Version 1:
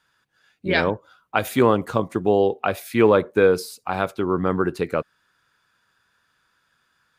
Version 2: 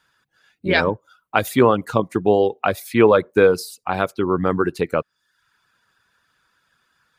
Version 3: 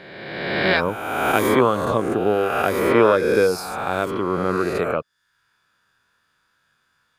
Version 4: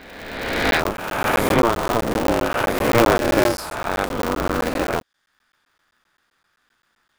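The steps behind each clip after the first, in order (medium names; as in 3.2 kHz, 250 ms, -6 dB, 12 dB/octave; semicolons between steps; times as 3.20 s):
reverb removal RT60 0.56 s; trim +3 dB
reverse spectral sustain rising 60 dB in 1.57 s; trim -5 dB
crackling interface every 0.13 s, samples 512, zero, from 0.71 s; polarity switched at an audio rate 120 Hz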